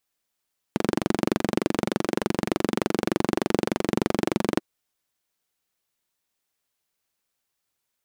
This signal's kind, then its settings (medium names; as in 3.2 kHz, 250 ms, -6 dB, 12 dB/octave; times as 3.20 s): single-cylinder engine model, steady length 3.84 s, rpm 2800, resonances 220/320 Hz